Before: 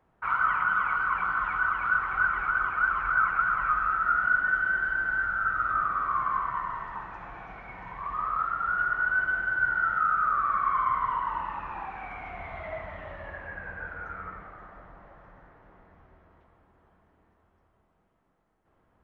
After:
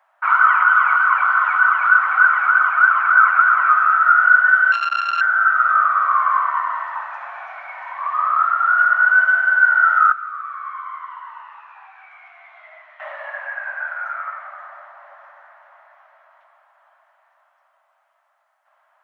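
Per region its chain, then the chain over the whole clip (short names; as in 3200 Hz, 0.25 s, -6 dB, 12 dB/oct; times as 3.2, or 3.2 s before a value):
4.72–5.21 sample sorter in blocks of 32 samples + Bessel low-pass 3000 Hz, order 8 + core saturation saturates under 1200 Hz
10.12–13 LPF 2000 Hz 6 dB/oct + differentiator + doubler 13 ms -5 dB
whole clip: Chebyshev high-pass 570 Hz, order 8; bell 1500 Hz +5.5 dB 1 oct; gain +8 dB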